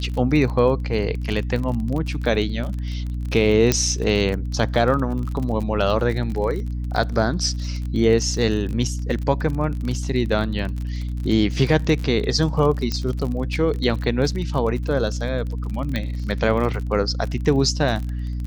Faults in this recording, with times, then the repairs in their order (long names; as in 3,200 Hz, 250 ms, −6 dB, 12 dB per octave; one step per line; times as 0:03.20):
surface crackle 34 per second −27 dBFS
mains hum 60 Hz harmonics 5 −26 dBFS
0:03.72: click −3 dBFS
0:12.92: click −11 dBFS
0:15.96: click −12 dBFS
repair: click removal
hum removal 60 Hz, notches 5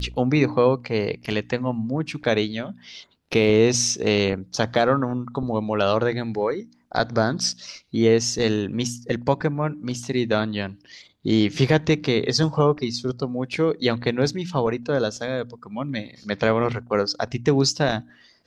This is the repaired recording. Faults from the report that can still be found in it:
none of them is left